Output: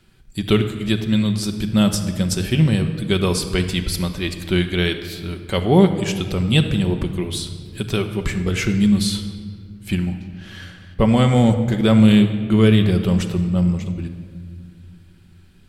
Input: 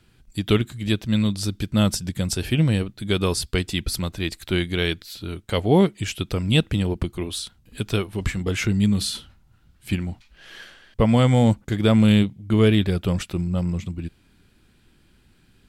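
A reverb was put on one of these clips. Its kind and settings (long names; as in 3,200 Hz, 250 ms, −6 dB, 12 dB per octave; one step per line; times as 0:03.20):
rectangular room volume 3,000 cubic metres, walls mixed, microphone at 1.1 metres
level +1.5 dB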